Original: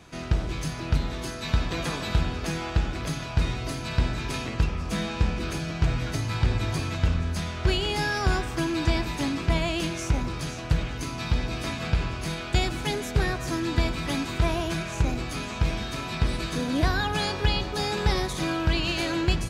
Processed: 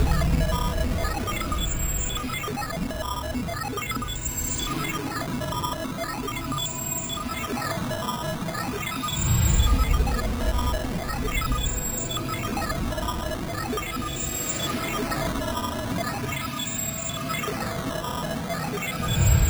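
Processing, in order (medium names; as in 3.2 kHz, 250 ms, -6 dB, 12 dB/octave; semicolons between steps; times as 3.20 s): whistle 7.6 kHz -29 dBFS; Paulstretch 16×, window 0.05 s, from 10.73 s; decimation with a swept rate 11×, swing 160% 0.4 Hz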